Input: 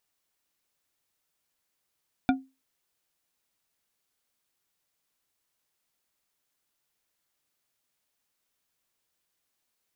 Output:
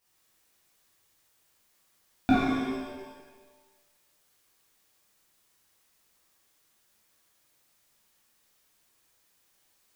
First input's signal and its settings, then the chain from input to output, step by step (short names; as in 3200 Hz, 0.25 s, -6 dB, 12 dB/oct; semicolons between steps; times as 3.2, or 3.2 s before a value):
glass hit bar, lowest mode 265 Hz, decay 0.26 s, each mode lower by 4 dB, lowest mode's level -16.5 dB
limiter -15.5 dBFS; shimmer reverb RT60 1.3 s, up +7 st, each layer -8 dB, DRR -10 dB